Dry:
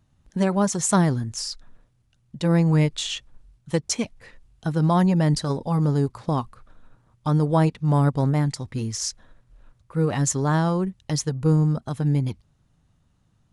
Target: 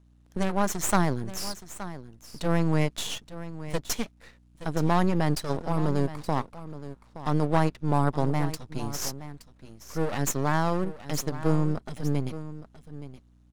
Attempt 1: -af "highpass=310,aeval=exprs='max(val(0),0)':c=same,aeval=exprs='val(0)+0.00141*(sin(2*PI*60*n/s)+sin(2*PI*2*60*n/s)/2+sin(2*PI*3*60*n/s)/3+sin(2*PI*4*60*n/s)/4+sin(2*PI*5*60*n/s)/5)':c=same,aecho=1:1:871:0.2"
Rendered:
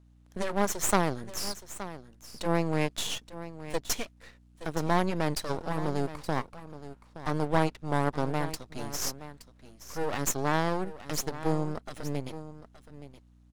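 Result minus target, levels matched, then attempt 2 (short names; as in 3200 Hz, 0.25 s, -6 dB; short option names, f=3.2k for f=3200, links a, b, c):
125 Hz band -3.5 dB
-af "highpass=150,aeval=exprs='max(val(0),0)':c=same,aeval=exprs='val(0)+0.00141*(sin(2*PI*60*n/s)+sin(2*PI*2*60*n/s)/2+sin(2*PI*3*60*n/s)/3+sin(2*PI*4*60*n/s)/4+sin(2*PI*5*60*n/s)/5)':c=same,aecho=1:1:871:0.2"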